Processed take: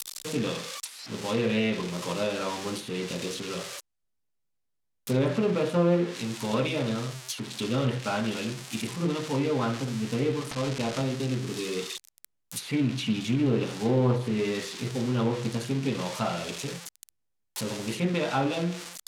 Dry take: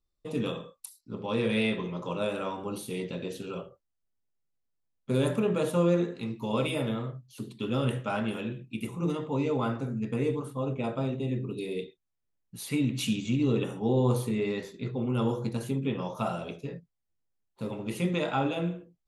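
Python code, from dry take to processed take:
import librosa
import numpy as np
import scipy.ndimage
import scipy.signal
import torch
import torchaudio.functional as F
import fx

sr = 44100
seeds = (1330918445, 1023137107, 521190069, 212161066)

y = x + 0.5 * 10.0 ** (-20.0 / 20.0) * np.diff(np.sign(x), prepend=np.sign(x[:1]))
y = fx.resample_bad(y, sr, factor=2, down='none', up='hold', at=(10.51, 11.02))
y = fx.env_lowpass_down(y, sr, base_hz=2600.0, full_db=-21.5)
y = fx.doppler_dist(y, sr, depth_ms=0.15)
y = F.gain(torch.from_numpy(y), 1.5).numpy()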